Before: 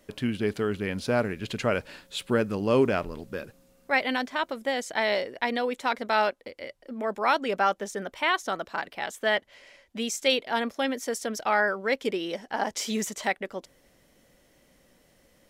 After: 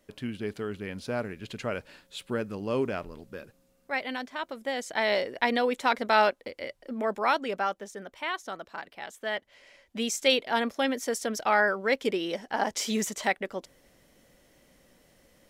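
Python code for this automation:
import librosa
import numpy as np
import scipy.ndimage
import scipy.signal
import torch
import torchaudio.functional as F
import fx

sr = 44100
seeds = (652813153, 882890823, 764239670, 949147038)

y = fx.gain(x, sr, db=fx.line((4.35, -6.5), (5.37, 2.0), (6.95, 2.0), (7.88, -7.5), (9.27, -7.5), (10.02, 0.5)))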